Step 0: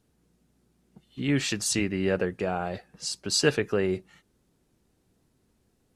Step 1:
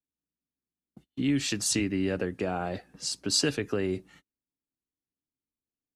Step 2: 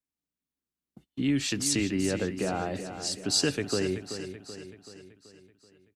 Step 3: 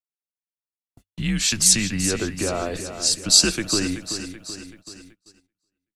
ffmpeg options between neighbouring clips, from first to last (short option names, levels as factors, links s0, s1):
-filter_complex "[0:a]agate=range=0.0251:threshold=0.002:ratio=16:detection=peak,equalizer=f=280:t=o:w=0.34:g=9,acrossover=split=120|3000[s0][s1][s2];[s1]acompressor=threshold=0.0501:ratio=4[s3];[s0][s3][s2]amix=inputs=3:normalize=0"
-af "aecho=1:1:381|762|1143|1524|1905|2286:0.316|0.164|0.0855|0.0445|0.0231|0.012"
-af "agate=range=0.0501:threshold=0.00282:ratio=16:detection=peak,afreqshift=-100,bass=f=250:g=-5,treble=f=4000:g=8,volume=2"